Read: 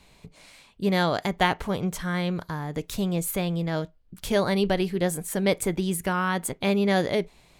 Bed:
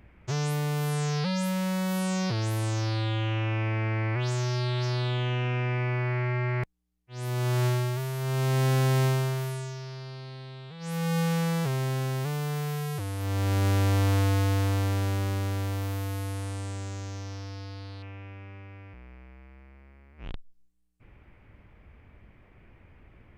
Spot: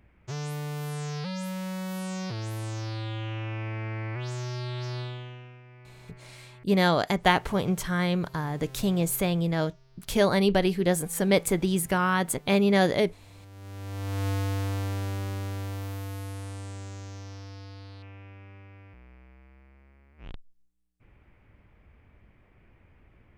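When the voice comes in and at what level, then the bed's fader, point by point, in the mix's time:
5.85 s, +1.0 dB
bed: 5 s -5.5 dB
5.63 s -23 dB
13.51 s -23 dB
14.28 s -4 dB

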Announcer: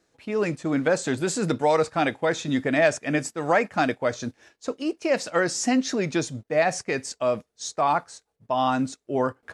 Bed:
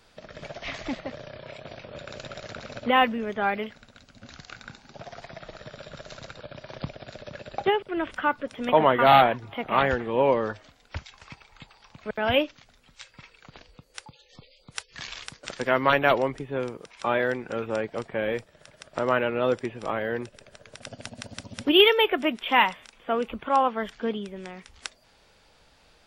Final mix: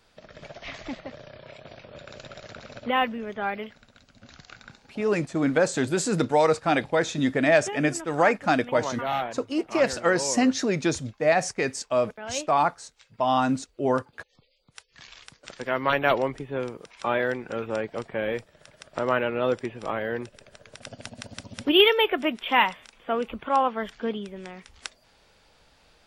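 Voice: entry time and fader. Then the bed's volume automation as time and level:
4.70 s, +0.5 dB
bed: 4.65 s -3.5 dB
5.32 s -11.5 dB
14.8 s -11.5 dB
16.17 s -0.5 dB

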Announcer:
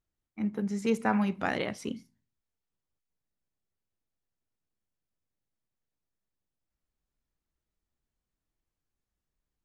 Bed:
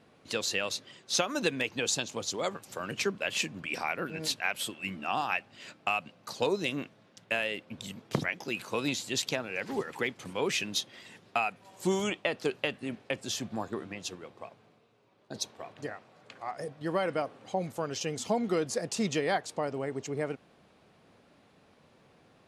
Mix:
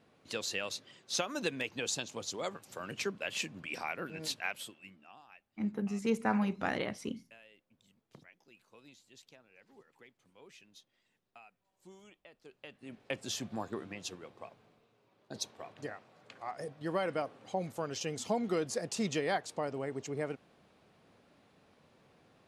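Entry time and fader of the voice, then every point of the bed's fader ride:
5.20 s, -3.5 dB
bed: 4.48 s -5.5 dB
5.2 s -27 dB
12.4 s -27 dB
13.14 s -3.5 dB

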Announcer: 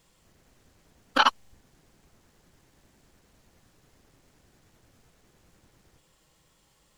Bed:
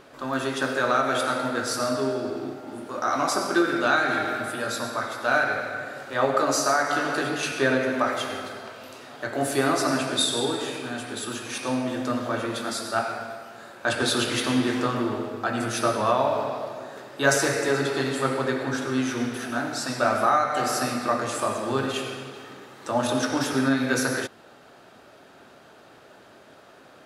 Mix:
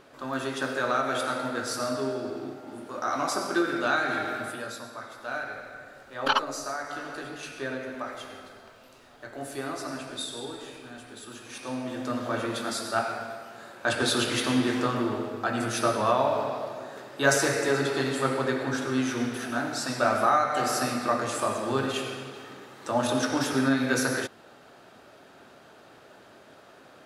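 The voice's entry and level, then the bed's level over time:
5.10 s, -3.5 dB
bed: 4.48 s -4 dB
4.85 s -11.5 dB
11.25 s -11.5 dB
12.39 s -1.5 dB

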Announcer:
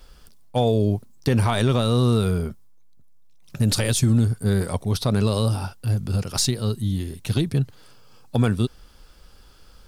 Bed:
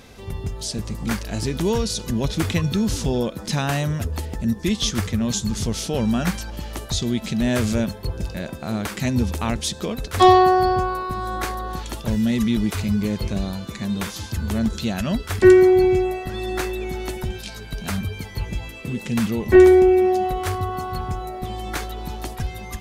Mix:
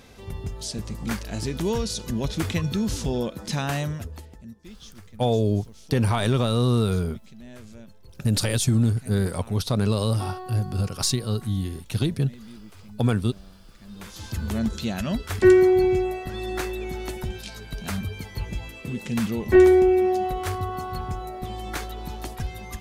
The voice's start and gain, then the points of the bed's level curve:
4.65 s, -2.0 dB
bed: 3.83 s -4 dB
4.61 s -23.5 dB
13.78 s -23.5 dB
14.29 s -3.5 dB

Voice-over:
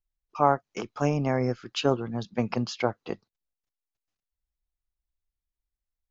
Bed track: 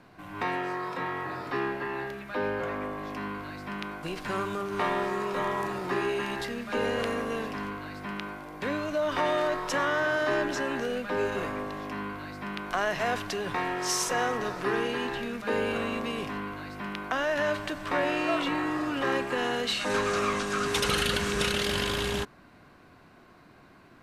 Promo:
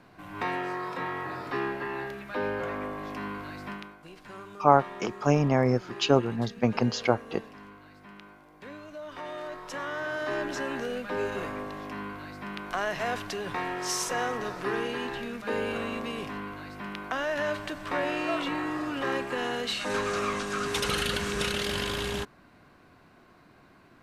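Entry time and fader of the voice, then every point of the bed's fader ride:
4.25 s, +2.5 dB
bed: 3.69 s -0.5 dB
3.97 s -13 dB
9.14 s -13 dB
10.62 s -2 dB

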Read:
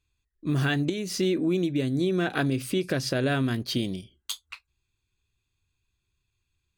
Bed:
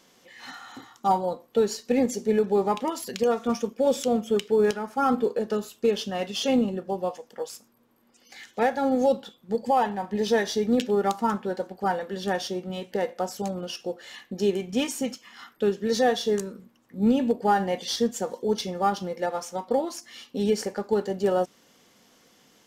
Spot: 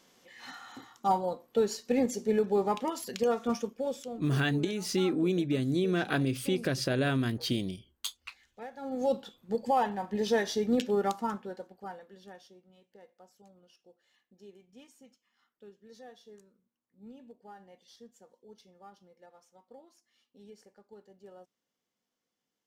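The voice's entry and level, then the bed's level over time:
3.75 s, -3.0 dB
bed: 3.57 s -4.5 dB
4.31 s -20.5 dB
8.7 s -20.5 dB
9.14 s -4.5 dB
11.03 s -4.5 dB
12.7 s -28.5 dB

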